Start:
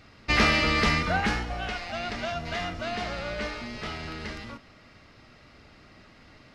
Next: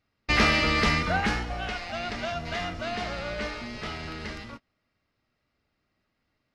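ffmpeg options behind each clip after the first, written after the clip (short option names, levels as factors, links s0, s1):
-af "agate=range=0.0631:threshold=0.01:ratio=16:detection=peak"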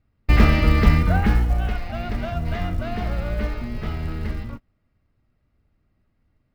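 -af "aemphasis=mode=reproduction:type=riaa,acrusher=bits=9:mode=log:mix=0:aa=0.000001"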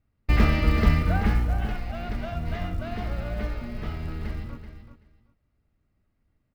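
-af "aecho=1:1:382|764:0.299|0.0478,volume=0.562"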